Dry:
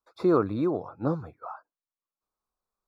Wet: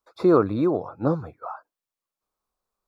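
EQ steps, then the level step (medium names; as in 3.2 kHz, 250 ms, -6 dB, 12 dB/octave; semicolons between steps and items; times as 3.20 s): peaking EQ 550 Hz +2 dB; +4.0 dB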